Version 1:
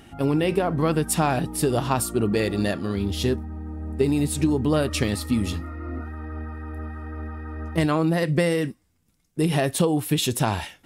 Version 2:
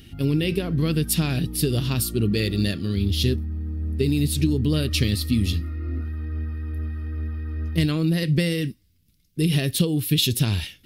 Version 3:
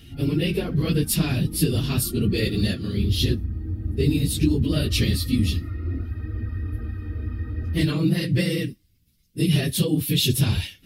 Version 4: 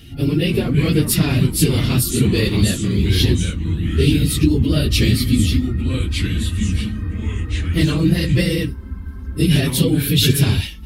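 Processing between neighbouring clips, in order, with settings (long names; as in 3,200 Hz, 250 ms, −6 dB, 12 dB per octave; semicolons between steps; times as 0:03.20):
drawn EQ curve 100 Hz 0 dB, 440 Hz −10 dB, 820 Hz −24 dB, 2,900 Hz −2 dB, 4,500 Hz +1 dB, 7,700 Hz −10 dB, 13,000 Hz +1 dB; level +6 dB
random phases in long frames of 50 ms
delay with pitch and tempo change per echo 273 ms, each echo −3 semitones, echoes 2, each echo −6 dB; level +5 dB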